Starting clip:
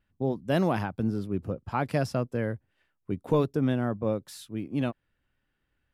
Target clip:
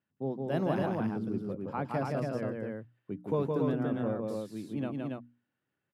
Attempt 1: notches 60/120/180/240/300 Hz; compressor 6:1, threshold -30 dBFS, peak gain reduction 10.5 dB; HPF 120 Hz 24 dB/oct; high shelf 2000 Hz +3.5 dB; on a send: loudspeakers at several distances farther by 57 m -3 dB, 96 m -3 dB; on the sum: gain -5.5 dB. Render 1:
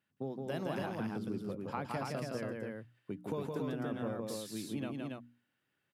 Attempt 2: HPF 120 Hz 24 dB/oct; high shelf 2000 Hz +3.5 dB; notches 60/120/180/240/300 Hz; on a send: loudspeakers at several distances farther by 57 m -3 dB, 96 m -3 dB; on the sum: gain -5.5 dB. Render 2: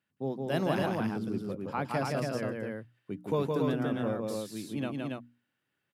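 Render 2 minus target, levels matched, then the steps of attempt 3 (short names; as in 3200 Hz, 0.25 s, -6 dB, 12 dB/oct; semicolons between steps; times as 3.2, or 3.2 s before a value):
4000 Hz band +8.5 dB
HPF 120 Hz 24 dB/oct; high shelf 2000 Hz -8.5 dB; notches 60/120/180/240/300 Hz; on a send: loudspeakers at several distances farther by 57 m -3 dB, 96 m -3 dB; on the sum: gain -5.5 dB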